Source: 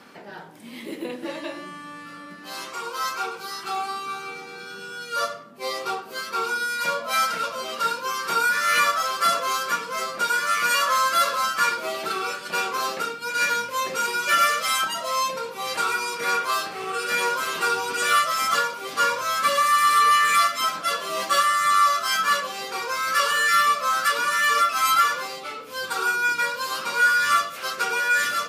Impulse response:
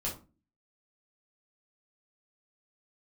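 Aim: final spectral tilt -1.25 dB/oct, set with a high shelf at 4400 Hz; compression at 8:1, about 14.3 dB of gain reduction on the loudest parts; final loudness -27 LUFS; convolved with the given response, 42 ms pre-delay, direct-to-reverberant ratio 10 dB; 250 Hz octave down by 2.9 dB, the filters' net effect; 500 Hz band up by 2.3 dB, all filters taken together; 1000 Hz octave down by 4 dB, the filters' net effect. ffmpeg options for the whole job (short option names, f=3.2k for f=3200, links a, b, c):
-filter_complex "[0:a]equalizer=f=250:t=o:g=-7.5,equalizer=f=500:t=o:g=6,equalizer=f=1k:t=o:g=-7,highshelf=f=4.4k:g=5.5,acompressor=threshold=-32dB:ratio=8,asplit=2[a][b];[1:a]atrim=start_sample=2205,adelay=42[c];[b][c]afir=irnorm=-1:irlink=0,volume=-13dB[d];[a][d]amix=inputs=2:normalize=0,volume=6.5dB"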